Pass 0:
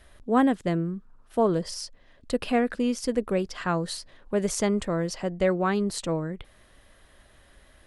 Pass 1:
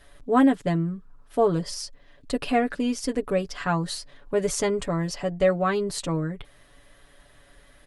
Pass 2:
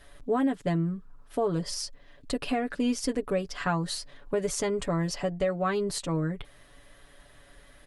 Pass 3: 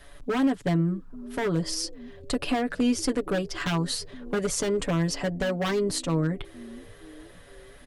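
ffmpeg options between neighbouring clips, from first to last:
ffmpeg -i in.wav -af "aecho=1:1:7:0.71" out.wav
ffmpeg -i in.wav -af "alimiter=limit=-18dB:level=0:latency=1:release=308" out.wav
ffmpeg -i in.wav -filter_complex "[0:a]acrossover=split=290|4700[link_01][link_02][link_03];[link_01]asplit=6[link_04][link_05][link_06][link_07][link_08][link_09];[link_05]adelay=468,afreqshift=76,volume=-15dB[link_10];[link_06]adelay=936,afreqshift=152,volume=-20.4dB[link_11];[link_07]adelay=1404,afreqshift=228,volume=-25.7dB[link_12];[link_08]adelay=1872,afreqshift=304,volume=-31.1dB[link_13];[link_09]adelay=2340,afreqshift=380,volume=-36.4dB[link_14];[link_04][link_10][link_11][link_12][link_13][link_14]amix=inputs=6:normalize=0[link_15];[link_02]aeval=exprs='0.0473*(abs(mod(val(0)/0.0473+3,4)-2)-1)':channel_layout=same[link_16];[link_15][link_16][link_03]amix=inputs=3:normalize=0,volume=3.5dB" out.wav

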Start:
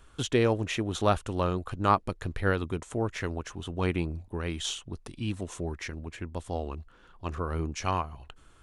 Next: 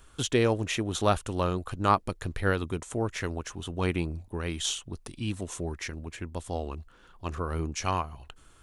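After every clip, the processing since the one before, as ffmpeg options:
ffmpeg -i in.wav -af "highshelf=frequency=5500:gain=7.5" out.wav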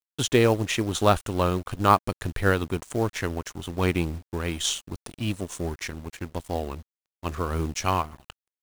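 ffmpeg -i in.wav -af "acrusher=bits=6:mode=log:mix=0:aa=0.000001,aeval=exprs='sgn(val(0))*max(abs(val(0))-0.00562,0)':channel_layout=same,volume=5dB" out.wav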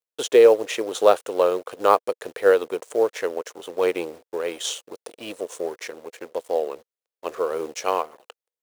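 ffmpeg -i in.wav -af "highpass=frequency=480:width_type=q:width=4.9,volume=-2dB" out.wav

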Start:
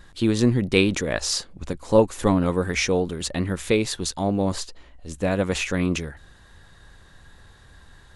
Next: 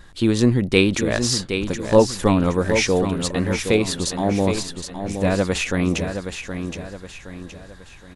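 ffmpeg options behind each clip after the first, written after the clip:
ffmpeg -i in.wav -af "aecho=1:1:769|1538|2307|3076|3845:0.398|0.163|0.0669|0.0274|0.0112,volume=2.5dB" out.wav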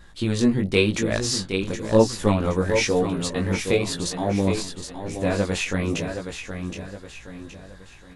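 ffmpeg -i in.wav -af "flanger=delay=17.5:depth=3.7:speed=0.97" out.wav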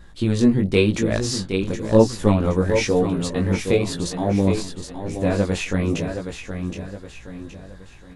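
ffmpeg -i in.wav -af "tiltshelf=frequency=720:gain=3,volume=1dB" out.wav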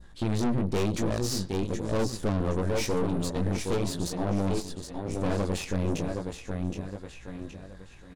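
ffmpeg -i in.wav -filter_complex "[0:a]aeval=exprs='(tanh(15.8*val(0)+0.8)-tanh(0.8))/15.8':channel_layout=same,asplit=2[link_01][link_02];[link_02]adelay=100,highpass=300,lowpass=3400,asoftclip=type=hard:threshold=-27.5dB,volume=-18dB[link_03];[link_01][link_03]amix=inputs=2:normalize=0,adynamicequalizer=threshold=0.00355:dfrequency=2100:dqfactor=0.95:tfrequency=2100:tqfactor=0.95:attack=5:release=100:ratio=0.375:range=3:mode=cutabove:tftype=bell" out.wav

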